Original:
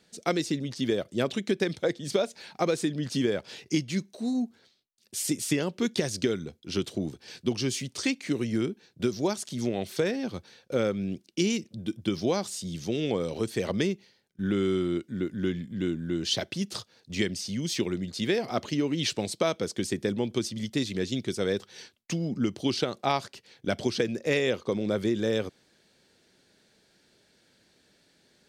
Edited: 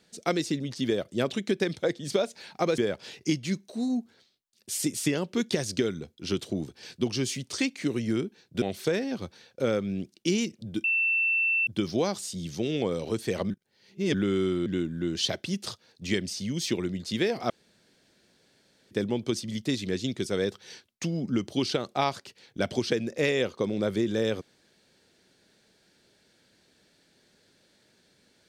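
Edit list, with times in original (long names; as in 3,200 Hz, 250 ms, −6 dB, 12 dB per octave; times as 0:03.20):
0:02.78–0:03.23: remove
0:09.07–0:09.74: remove
0:11.96: insert tone 2,680 Hz −22 dBFS 0.83 s
0:13.79–0:14.43: reverse
0:14.95–0:15.74: remove
0:18.58–0:19.99: fill with room tone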